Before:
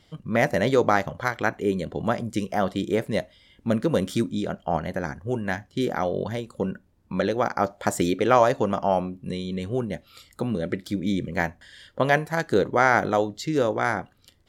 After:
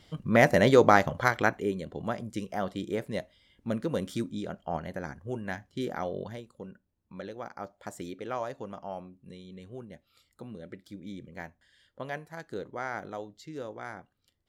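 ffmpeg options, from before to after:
-af "volume=1dB,afade=t=out:st=1.34:d=0.4:silence=0.354813,afade=t=out:st=6.11:d=0.5:silence=0.375837"

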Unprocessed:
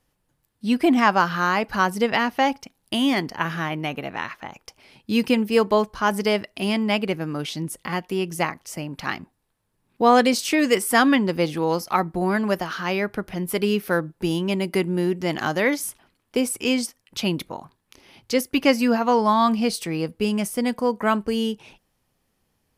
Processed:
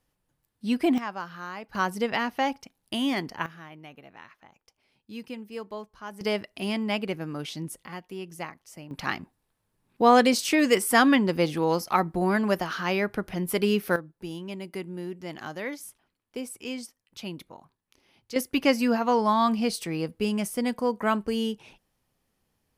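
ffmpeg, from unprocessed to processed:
-af "asetnsamples=n=441:p=0,asendcmd='0.98 volume volume -16.5dB;1.75 volume volume -6dB;3.46 volume volume -18.5dB;6.21 volume volume -6dB;7.85 volume volume -12.5dB;8.91 volume volume -2dB;13.96 volume volume -13dB;18.36 volume volume -4dB',volume=-5dB"

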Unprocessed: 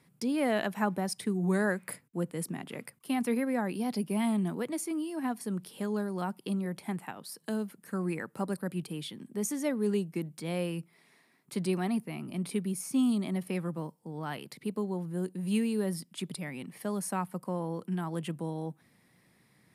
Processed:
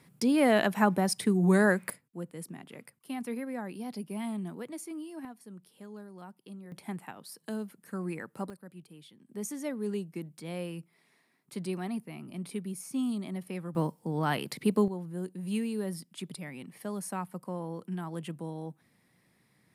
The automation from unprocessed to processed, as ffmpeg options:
-af "asetnsamples=n=441:p=0,asendcmd='1.9 volume volume -6.5dB;5.25 volume volume -13.5dB;6.72 volume volume -3dB;8.5 volume volume -14dB;9.29 volume volume -4.5dB;13.75 volume volume 8dB;14.88 volume volume -3dB',volume=5dB"

